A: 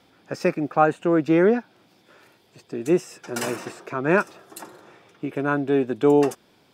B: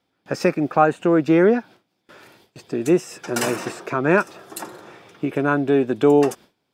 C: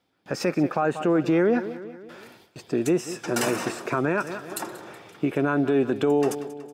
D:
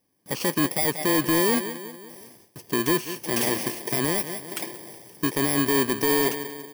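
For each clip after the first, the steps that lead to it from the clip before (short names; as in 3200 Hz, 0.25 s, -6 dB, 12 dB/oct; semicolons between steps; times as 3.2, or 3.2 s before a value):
gate with hold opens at -46 dBFS; in parallel at +1 dB: compressor, threshold -26 dBFS, peak gain reduction 14 dB
feedback echo 0.186 s, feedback 53%, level -18.5 dB; limiter -13.5 dBFS, peak gain reduction 10.5 dB
FFT order left unsorted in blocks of 32 samples; dynamic EQ 2300 Hz, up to +4 dB, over -43 dBFS, Q 1; wavefolder -15.5 dBFS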